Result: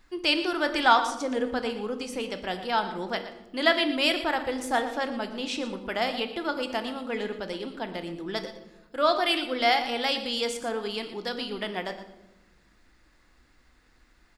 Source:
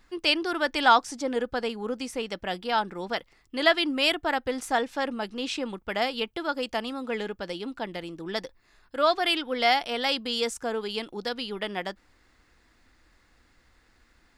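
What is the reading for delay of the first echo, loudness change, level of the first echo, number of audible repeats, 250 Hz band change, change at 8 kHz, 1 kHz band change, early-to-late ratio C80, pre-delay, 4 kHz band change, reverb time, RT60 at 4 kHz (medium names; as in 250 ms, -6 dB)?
118 ms, 0.0 dB, -13.5 dB, 1, +1.0 dB, -0.5 dB, 0.0 dB, 10.5 dB, 3 ms, -0.5 dB, 1.0 s, 0.70 s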